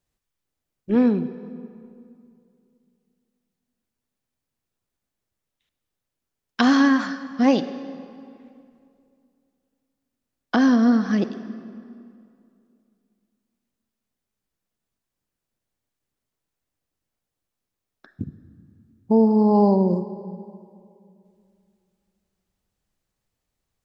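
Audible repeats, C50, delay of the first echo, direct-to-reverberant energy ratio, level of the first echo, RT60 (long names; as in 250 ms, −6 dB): no echo audible, 12.0 dB, no echo audible, 11.5 dB, no echo audible, 2.5 s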